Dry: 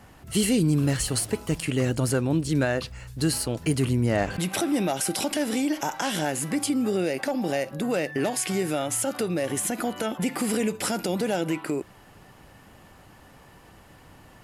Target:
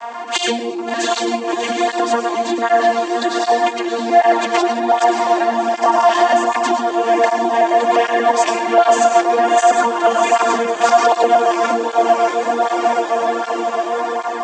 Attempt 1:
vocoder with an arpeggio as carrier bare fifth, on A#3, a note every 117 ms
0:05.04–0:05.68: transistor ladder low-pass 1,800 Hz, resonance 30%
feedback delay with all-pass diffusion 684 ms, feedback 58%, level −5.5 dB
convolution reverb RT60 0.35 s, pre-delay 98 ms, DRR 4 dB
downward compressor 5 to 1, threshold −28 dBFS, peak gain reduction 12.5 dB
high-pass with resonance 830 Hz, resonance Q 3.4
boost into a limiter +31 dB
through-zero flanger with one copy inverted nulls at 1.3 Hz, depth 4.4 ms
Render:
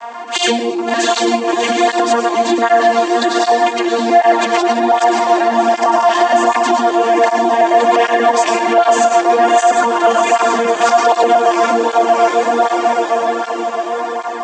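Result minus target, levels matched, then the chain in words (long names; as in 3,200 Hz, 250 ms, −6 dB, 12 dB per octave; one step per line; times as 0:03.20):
downward compressor: peak gain reduction −5 dB
vocoder with an arpeggio as carrier bare fifth, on A#3, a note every 117 ms
0:05.04–0:05.68: transistor ladder low-pass 1,800 Hz, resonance 30%
feedback delay with all-pass diffusion 684 ms, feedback 58%, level −5.5 dB
convolution reverb RT60 0.35 s, pre-delay 98 ms, DRR 4 dB
downward compressor 5 to 1, threshold −34.5 dBFS, peak gain reduction 17.5 dB
high-pass with resonance 830 Hz, resonance Q 3.4
boost into a limiter +31 dB
through-zero flanger with one copy inverted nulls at 1.3 Hz, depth 4.4 ms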